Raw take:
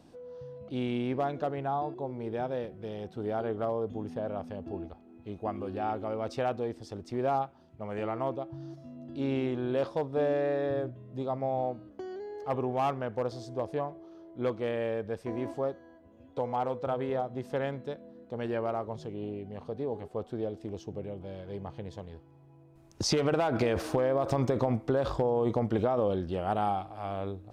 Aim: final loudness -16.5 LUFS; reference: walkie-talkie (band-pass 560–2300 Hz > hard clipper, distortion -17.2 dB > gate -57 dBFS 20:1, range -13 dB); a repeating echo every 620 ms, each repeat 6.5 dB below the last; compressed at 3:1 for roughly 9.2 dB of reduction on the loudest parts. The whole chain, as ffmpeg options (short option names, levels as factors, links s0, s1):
-af "acompressor=threshold=0.0158:ratio=3,highpass=560,lowpass=2300,aecho=1:1:620|1240|1860|2480|3100|3720:0.473|0.222|0.105|0.0491|0.0231|0.0109,asoftclip=type=hard:threshold=0.0188,agate=range=0.224:threshold=0.00141:ratio=20,volume=23.7"